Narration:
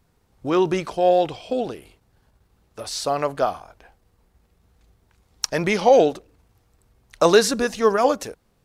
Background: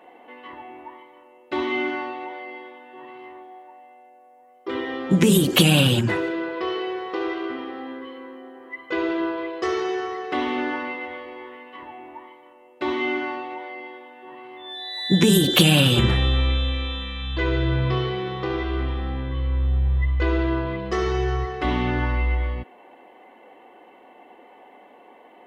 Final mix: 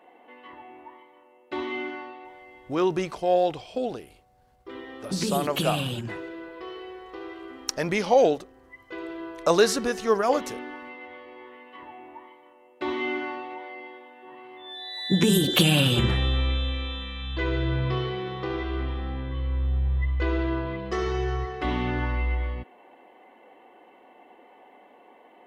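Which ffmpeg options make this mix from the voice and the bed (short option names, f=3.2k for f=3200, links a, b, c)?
-filter_complex "[0:a]adelay=2250,volume=-4.5dB[a];[1:a]volume=2.5dB,afade=t=out:st=1.51:d=0.83:silence=0.473151,afade=t=in:st=10.83:d=1.01:silence=0.398107[b];[a][b]amix=inputs=2:normalize=0"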